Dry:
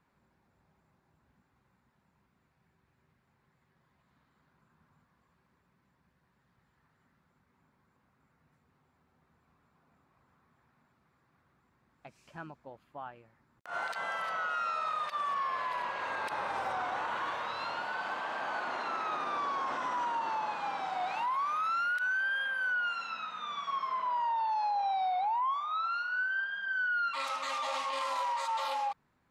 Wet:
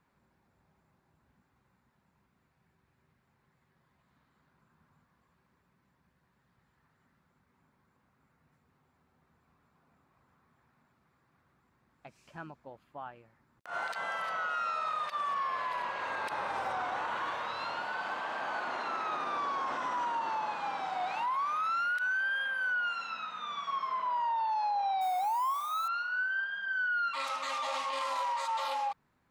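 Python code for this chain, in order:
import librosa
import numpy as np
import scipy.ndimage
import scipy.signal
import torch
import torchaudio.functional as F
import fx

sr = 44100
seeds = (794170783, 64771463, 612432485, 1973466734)

y = fx.crossing_spikes(x, sr, level_db=-38.0, at=(25.01, 25.88))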